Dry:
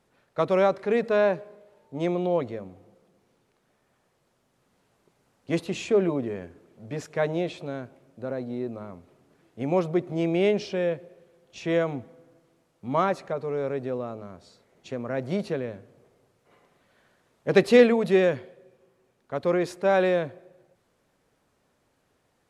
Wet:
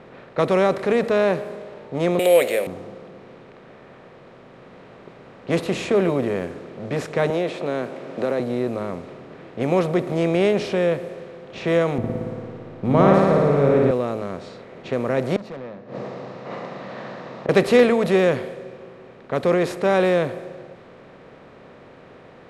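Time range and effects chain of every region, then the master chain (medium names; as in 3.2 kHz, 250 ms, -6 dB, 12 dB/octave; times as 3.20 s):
2.19–2.67 s: resonant high-pass 540 Hz, resonance Q 4.3 + resonant high shelf 1.6 kHz +13 dB, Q 3 + careless resampling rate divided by 4×, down filtered, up hold
7.30–8.40 s: high-pass 260 Hz + treble shelf 4.5 kHz -8 dB + three bands compressed up and down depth 70%
11.98–13.91 s: tilt EQ -4 dB/octave + flutter echo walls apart 9.7 m, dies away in 1.3 s
15.36–17.49 s: cabinet simulation 100–6000 Hz, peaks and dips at 130 Hz +9 dB, 200 Hz +9 dB, 410 Hz -9 dB, 1.5 kHz -10 dB, 2.3 kHz -9 dB, 3.2 kHz -9 dB + overdrive pedal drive 26 dB, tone 2.2 kHz, clips at -14.5 dBFS + inverted gate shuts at -28 dBFS, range -27 dB
whole clip: spectral levelling over time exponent 0.6; level-controlled noise filter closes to 2.9 kHz, open at -20 dBFS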